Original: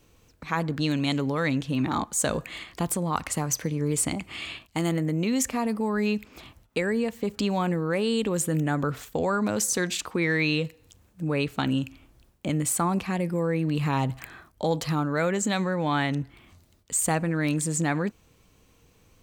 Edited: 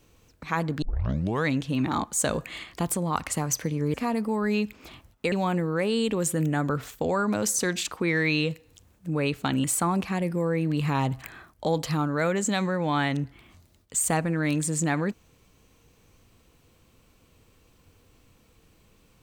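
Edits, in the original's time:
0.82 s: tape start 0.63 s
3.94–5.46 s: delete
6.84–7.46 s: delete
11.78–12.62 s: delete

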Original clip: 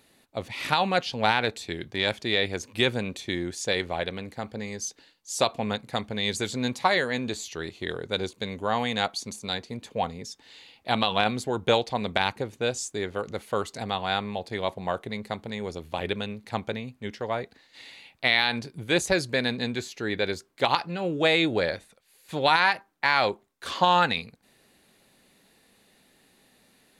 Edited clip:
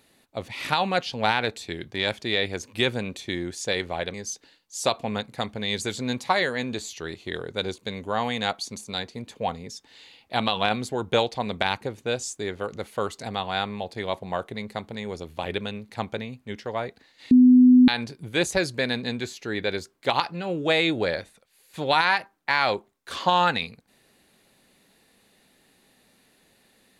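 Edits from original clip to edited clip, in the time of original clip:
4.14–4.69 s: delete
17.86–18.43 s: bleep 251 Hz -10 dBFS

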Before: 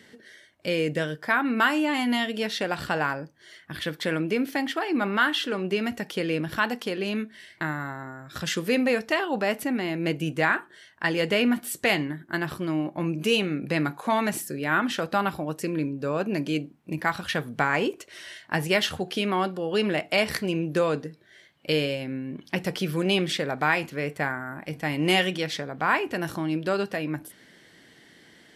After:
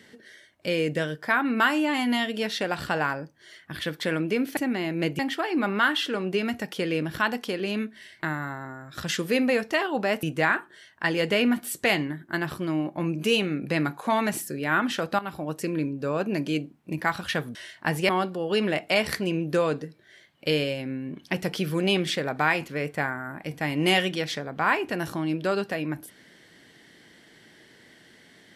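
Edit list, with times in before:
9.61–10.23 s: move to 4.57 s
15.19–15.59 s: fade in equal-power, from -16 dB
17.55–18.22 s: delete
18.76–19.31 s: delete

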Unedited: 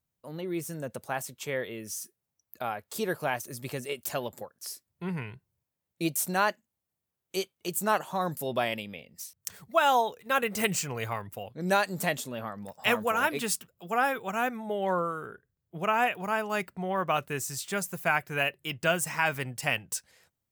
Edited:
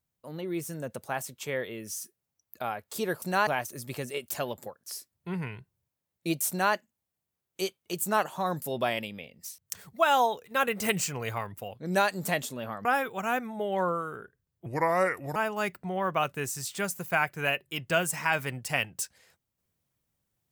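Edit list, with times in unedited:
6.24–6.49 s: copy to 3.22 s
12.60–13.95 s: delete
15.76–16.29 s: speed 76%

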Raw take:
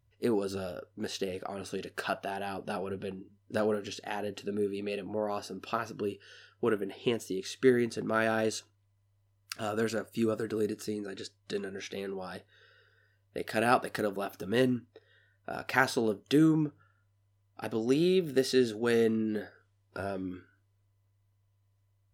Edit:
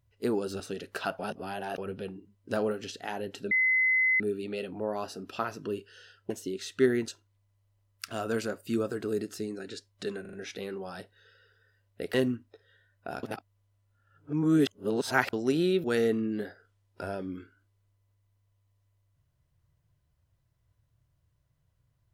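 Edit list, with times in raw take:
0.60–1.63 s: delete
2.22–2.81 s: reverse
4.54 s: add tone 2.04 kHz -21.5 dBFS 0.69 s
6.64–7.14 s: delete
7.92–8.56 s: delete
11.69 s: stutter 0.04 s, 4 plays
13.50–14.56 s: delete
15.65–17.75 s: reverse
18.26–18.80 s: delete

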